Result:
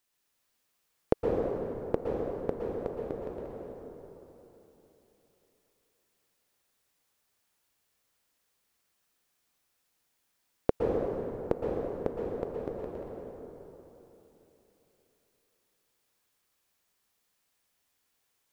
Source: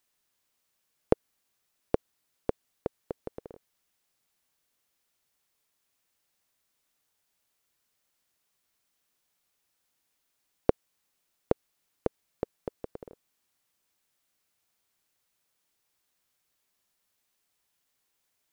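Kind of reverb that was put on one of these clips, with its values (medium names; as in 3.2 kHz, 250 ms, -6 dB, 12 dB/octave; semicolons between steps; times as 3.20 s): plate-style reverb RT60 3.5 s, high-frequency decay 0.55×, pre-delay 105 ms, DRR -3 dB; trim -2.5 dB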